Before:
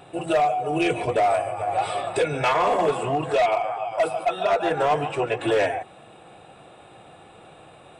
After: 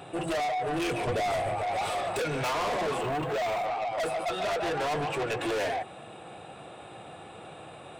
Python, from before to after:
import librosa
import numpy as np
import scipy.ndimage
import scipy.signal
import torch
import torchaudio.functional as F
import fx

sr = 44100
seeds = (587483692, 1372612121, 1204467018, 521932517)

y = scipy.signal.sosfilt(scipy.signal.butter(2, 61.0, 'highpass', fs=sr, output='sos'), x)
y = 10.0 ** (-30.0 / 20.0) * np.tanh(y / 10.0 ** (-30.0 / 20.0))
y = fx.low_shelf(y, sr, hz=180.0, db=10.0, at=(1.07, 1.59))
y = fx.resample_linear(y, sr, factor=4, at=(3.01, 3.66))
y = y * 10.0 ** (2.5 / 20.0)